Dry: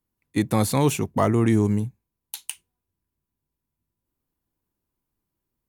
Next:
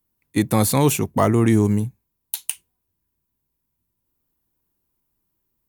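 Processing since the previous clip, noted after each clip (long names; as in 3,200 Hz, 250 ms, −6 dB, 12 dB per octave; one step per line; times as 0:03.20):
high-shelf EQ 12,000 Hz +11.5 dB
level +3 dB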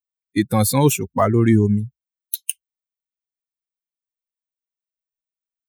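spectral dynamics exaggerated over time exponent 2
level +4 dB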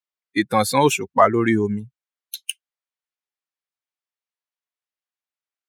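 resonant band-pass 1,500 Hz, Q 0.51
level +6 dB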